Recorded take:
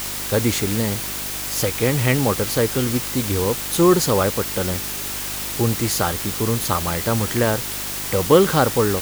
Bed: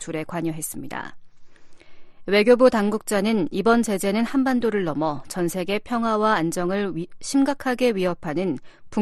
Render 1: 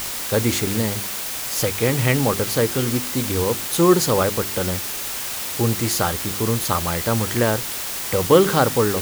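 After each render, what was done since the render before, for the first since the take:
hum removal 50 Hz, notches 8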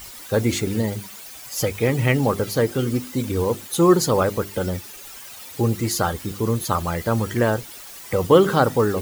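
broadband denoise 14 dB, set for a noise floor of −28 dBFS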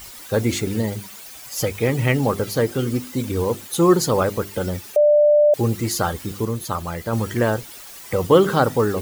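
0:04.96–0:05.54: beep over 593 Hz −10.5 dBFS
0:06.45–0:07.13: clip gain −3.5 dB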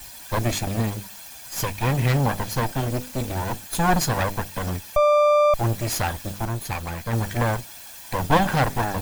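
lower of the sound and its delayed copy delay 1.2 ms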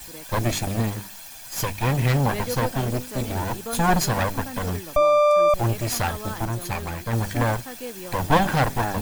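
mix in bed −15.5 dB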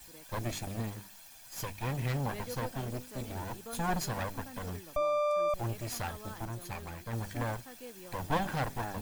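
level −12.5 dB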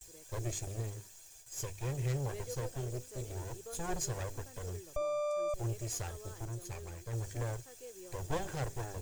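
noise gate with hold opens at −43 dBFS
drawn EQ curve 130 Hz 0 dB, 230 Hz −18 dB, 380 Hz +3 dB, 840 Hz −10 dB, 4,400 Hz −6 dB, 7,000 Hz +6 dB, 11,000 Hz −6 dB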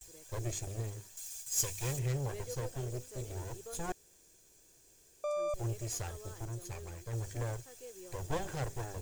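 0:01.17–0:01.99: high-shelf EQ 2,600 Hz +12 dB
0:03.92–0:05.24: fill with room tone

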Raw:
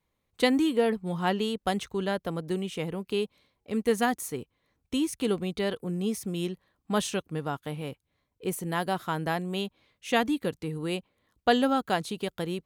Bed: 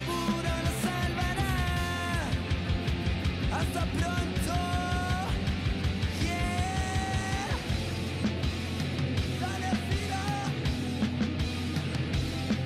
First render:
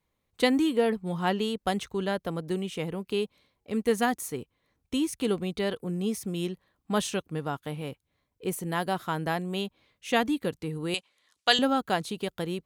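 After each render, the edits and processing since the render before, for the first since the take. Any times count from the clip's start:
0:10.94–0:11.59: meter weighting curve ITU-R 468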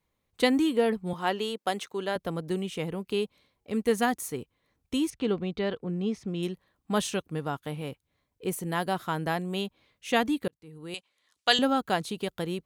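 0:01.13–0:02.16: high-pass filter 300 Hz
0:05.10–0:06.43: high-frequency loss of the air 150 metres
0:10.48–0:11.57: fade in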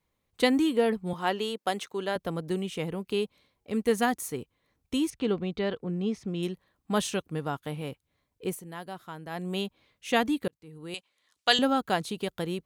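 0:08.46–0:09.47: duck −11 dB, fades 0.17 s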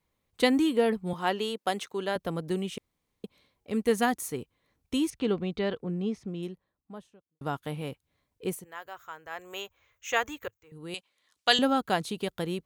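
0:02.78–0:03.24: fill with room tone
0:05.65–0:07.41: fade out and dull
0:08.64–0:10.72: drawn EQ curve 110 Hz 0 dB, 180 Hz −26 dB, 470 Hz −4 dB, 740 Hz −4 dB, 1,300 Hz +3 dB, 2,600 Hz 0 dB, 4,600 Hz −10 dB, 6,800 Hz +8 dB, 10,000 Hz −23 dB, 15,000 Hz +12 dB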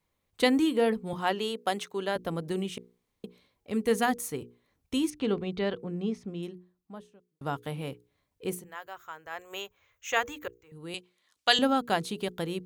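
mains-hum notches 60/120/180/240/300/360/420/480 Hz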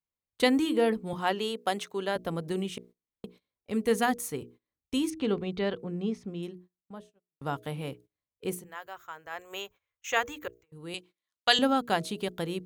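hum removal 318.7 Hz, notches 2
noise gate −52 dBFS, range −20 dB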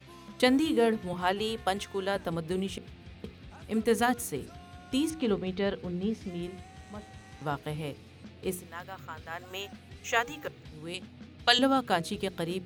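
mix in bed −19 dB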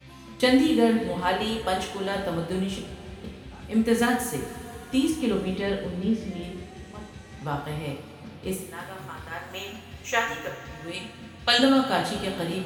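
coupled-rooms reverb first 0.52 s, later 4.2 s, from −18 dB, DRR −2 dB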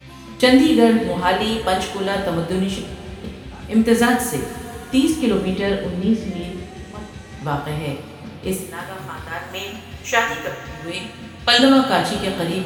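level +7 dB
brickwall limiter −1 dBFS, peak gain reduction 1.5 dB

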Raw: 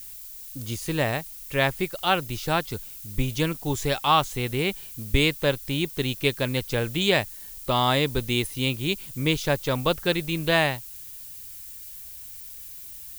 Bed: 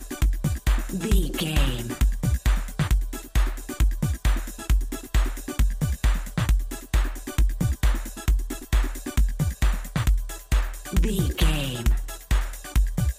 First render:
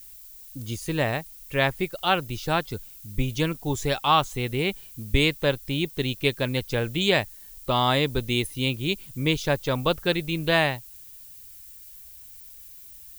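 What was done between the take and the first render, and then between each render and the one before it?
broadband denoise 6 dB, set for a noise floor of −41 dBFS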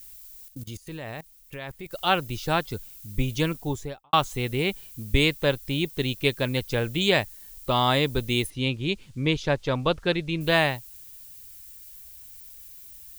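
0:00.48–0:01.91: output level in coarse steps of 18 dB
0:03.55–0:04.13: fade out and dull
0:08.50–0:10.41: high-frequency loss of the air 89 metres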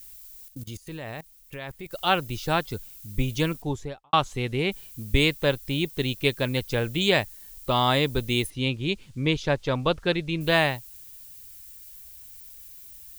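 0:03.62–0:04.72: high-frequency loss of the air 52 metres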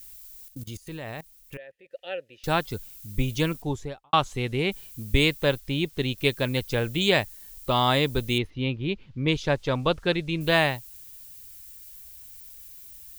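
0:01.57–0:02.44: formant filter e
0:05.60–0:06.18: high-shelf EQ 8,100 Hz −9 dB
0:08.38–0:09.28: high-frequency loss of the air 250 metres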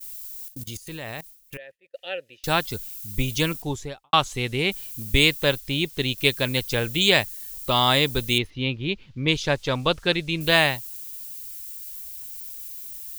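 downward expander −45 dBFS
high-shelf EQ 2,100 Hz +8.5 dB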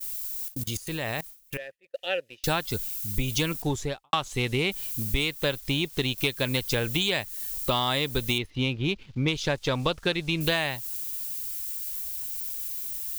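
downward compressor 10 to 1, threshold −25 dBFS, peak gain reduction 13.5 dB
leveller curve on the samples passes 1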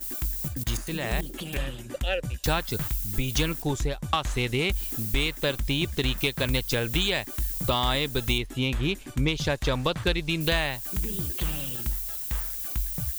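mix in bed −9.5 dB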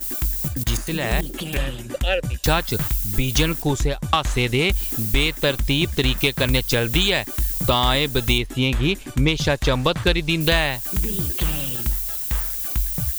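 level +6.5 dB

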